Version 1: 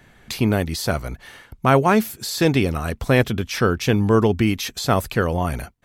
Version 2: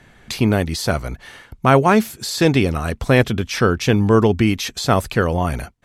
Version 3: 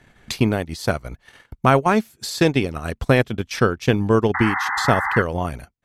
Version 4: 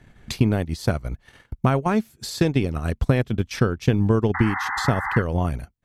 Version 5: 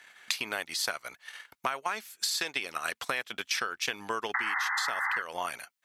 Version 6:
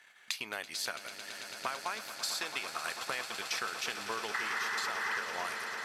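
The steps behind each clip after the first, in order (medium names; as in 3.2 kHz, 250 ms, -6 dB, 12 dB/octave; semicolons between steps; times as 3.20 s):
low-pass 11 kHz 12 dB/octave; trim +2.5 dB
transient shaper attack +5 dB, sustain -12 dB; painted sound noise, 4.34–5.22 s, 750–2100 Hz -19 dBFS; trim -4.5 dB
compression, threshold -16 dBFS, peak gain reduction 6.5 dB; bass shelf 280 Hz +9.5 dB; trim -3.5 dB
high-pass 1.4 kHz 12 dB/octave; compression 10:1, threshold -35 dBFS, peak gain reduction 10.5 dB; trim +8 dB
peaking EQ 280 Hz -2.5 dB 0.28 oct; on a send: echo with a slow build-up 111 ms, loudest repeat 8, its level -13.5 dB; on the sum: trim -5.5 dB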